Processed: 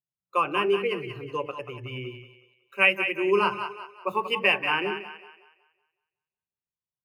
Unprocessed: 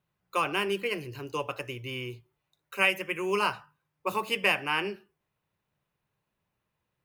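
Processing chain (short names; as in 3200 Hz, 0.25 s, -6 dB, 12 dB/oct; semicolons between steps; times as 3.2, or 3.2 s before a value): split-band echo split 460 Hz, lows 92 ms, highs 0.185 s, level -5.5 dB; spectral expander 1.5:1; gain +4.5 dB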